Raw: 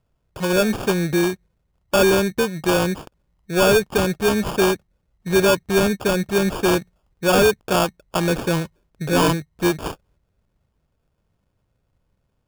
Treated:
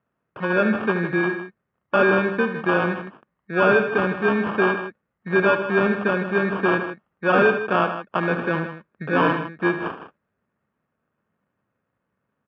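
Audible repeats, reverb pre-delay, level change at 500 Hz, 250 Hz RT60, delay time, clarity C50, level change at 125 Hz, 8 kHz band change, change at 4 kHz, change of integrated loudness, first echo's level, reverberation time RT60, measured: 2, none, -2.5 dB, none, 74 ms, none, -4.0 dB, under -35 dB, -11.5 dB, -1.5 dB, -10.5 dB, none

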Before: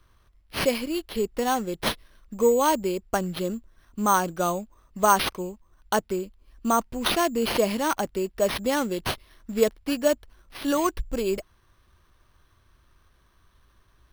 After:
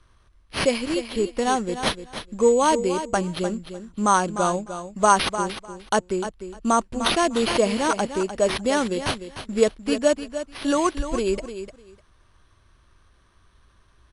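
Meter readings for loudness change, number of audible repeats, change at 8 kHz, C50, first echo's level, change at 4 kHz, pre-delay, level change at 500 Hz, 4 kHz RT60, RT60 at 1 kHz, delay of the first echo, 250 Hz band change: +2.5 dB, 2, +3.0 dB, none, -10.5 dB, +3.0 dB, none, +3.0 dB, none, none, 0.301 s, +3.0 dB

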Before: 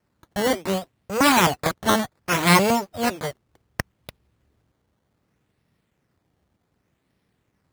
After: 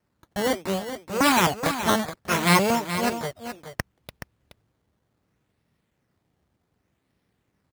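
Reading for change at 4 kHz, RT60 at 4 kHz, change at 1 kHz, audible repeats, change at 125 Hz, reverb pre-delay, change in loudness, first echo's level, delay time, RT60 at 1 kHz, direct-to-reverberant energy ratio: -2.0 dB, none, -2.0 dB, 1, -2.0 dB, none, -2.5 dB, -10.0 dB, 0.424 s, none, none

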